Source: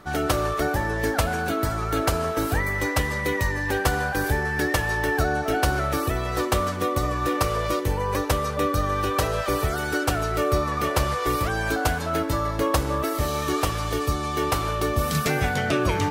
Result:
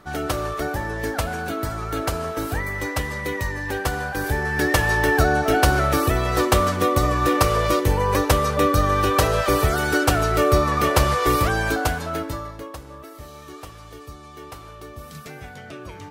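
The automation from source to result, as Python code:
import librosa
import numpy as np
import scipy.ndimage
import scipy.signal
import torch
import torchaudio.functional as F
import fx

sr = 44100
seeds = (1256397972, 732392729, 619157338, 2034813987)

y = fx.gain(x, sr, db=fx.line((4.11, -2.0), (4.83, 5.0), (11.45, 5.0), (12.28, -3.5), (12.75, -15.0)))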